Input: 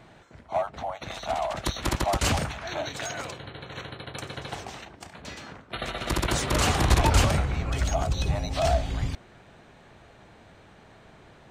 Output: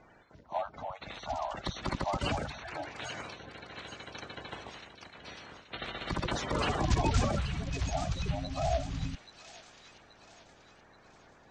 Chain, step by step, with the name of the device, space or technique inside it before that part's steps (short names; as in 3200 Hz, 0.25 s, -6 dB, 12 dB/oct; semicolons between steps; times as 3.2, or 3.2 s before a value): 2.52–2.99 elliptic low-pass 2800 Hz; clip after many re-uploads (LPF 6300 Hz 24 dB/oct; bin magnitudes rounded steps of 30 dB); thin delay 0.829 s, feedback 44%, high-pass 1900 Hz, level -7.5 dB; gain -6.5 dB